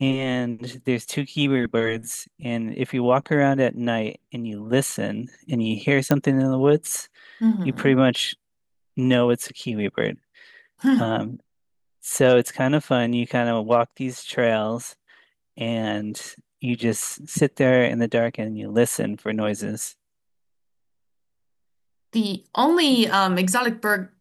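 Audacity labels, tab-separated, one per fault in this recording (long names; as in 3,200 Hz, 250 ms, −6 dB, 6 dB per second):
6.110000	6.110000	click −6 dBFS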